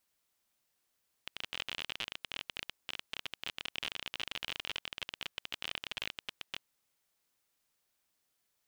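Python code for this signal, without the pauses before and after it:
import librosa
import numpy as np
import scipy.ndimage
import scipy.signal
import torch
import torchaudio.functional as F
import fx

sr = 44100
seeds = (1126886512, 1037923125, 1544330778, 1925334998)

y = fx.geiger_clicks(sr, seeds[0], length_s=5.33, per_s=32.0, level_db=-20.5)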